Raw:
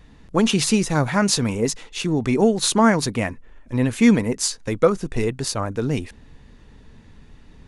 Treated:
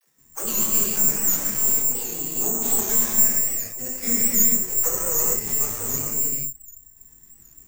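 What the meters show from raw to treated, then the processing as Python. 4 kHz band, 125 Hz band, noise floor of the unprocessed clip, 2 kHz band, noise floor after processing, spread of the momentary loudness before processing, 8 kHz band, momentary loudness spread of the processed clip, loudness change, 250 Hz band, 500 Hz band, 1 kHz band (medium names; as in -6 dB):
-10.5 dB, -15.5 dB, -48 dBFS, -10.5 dB, -54 dBFS, 9 LU, +8.5 dB, 9 LU, +1.5 dB, -14.0 dB, -12.5 dB, -12.0 dB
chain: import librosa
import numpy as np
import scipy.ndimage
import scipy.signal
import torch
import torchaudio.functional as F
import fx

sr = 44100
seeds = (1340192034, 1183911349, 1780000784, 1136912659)

y = fx.dereverb_blind(x, sr, rt60_s=2.0)
y = fx.high_shelf(y, sr, hz=2200.0, db=10.0)
y = fx.rider(y, sr, range_db=4, speed_s=2.0)
y = np.maximum(y, 0.0)
y = fx.dispersion(y, sr, late='lows', ms=94.0, hz=300.0)
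y = fx.step_gate(y, sr, bpm=166, pattern='x.xxxxx.xxxx', floor_db=-60.0, edge_ms=4.5)
y = fx.spacing_loss(y, sr, db_at_10k=21)
y = fx.doubler(y, sr, ms=29.0, db=-10.5)
y = fx.rev_gated(y, sr, seeds[0], gate_ms=490, shape='flat', drr_db=-7.0)
y = (np.kron(scipy.signal.resample_poly(y, 1, 6), np.eye(6)[0]) * 6)[:len(y)]
y = fx.record_warp(y, sr, rpm=78.0, depth_cents=100.0)
y = y * 10.0 ** (-14.5 / 20.0)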